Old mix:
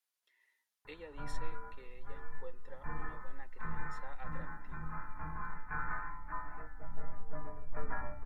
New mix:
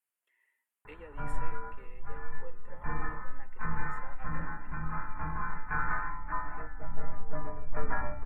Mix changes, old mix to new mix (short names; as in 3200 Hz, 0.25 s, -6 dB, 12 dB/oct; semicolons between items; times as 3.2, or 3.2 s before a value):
speech: add band shelf 4700 Hz -16 dB 1 oct; background +7.0 dB